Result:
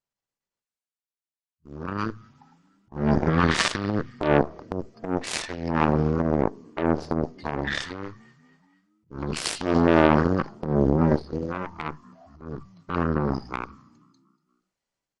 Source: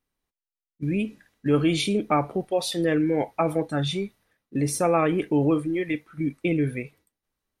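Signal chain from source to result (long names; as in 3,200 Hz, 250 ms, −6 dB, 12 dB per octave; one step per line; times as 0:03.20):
echo with shifted repeats 119 ms, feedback 53%, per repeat +59 Hz, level −23 dB
harmonic generator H 2 −6 dB, 7 −15 dB, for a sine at −9.5 dBFS
transient designer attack −12 dB, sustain +7 dB
wrong playback speed 15 ips tape played at 7.5 ips
low-shelf EQ 140 Hz −10 dB
level +4.5 dB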